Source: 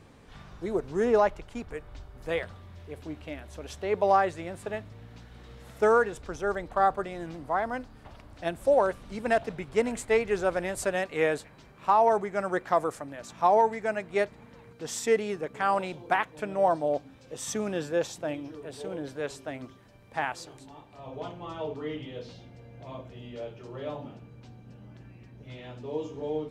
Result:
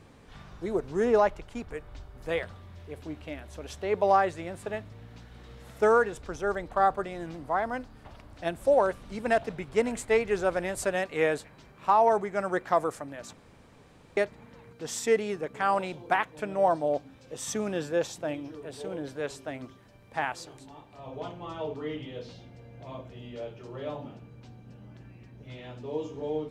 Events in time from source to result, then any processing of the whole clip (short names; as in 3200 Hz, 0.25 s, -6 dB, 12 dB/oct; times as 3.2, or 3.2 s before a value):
13.33–14.17 room tone